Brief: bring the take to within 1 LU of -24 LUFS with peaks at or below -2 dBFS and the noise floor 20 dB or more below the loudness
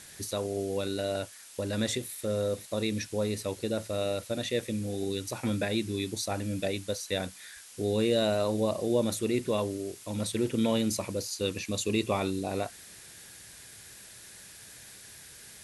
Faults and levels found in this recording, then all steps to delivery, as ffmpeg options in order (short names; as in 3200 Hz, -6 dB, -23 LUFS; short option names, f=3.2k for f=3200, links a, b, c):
noise floor -50 dBFS; noise floor target -51 dBFS; loudness -31.0 LUFS; peak -14.5 dBFS; loudness target -24.0 LUFS
-> -af "afftdn=nr=6:nf=-50"
-af "volume=7dB"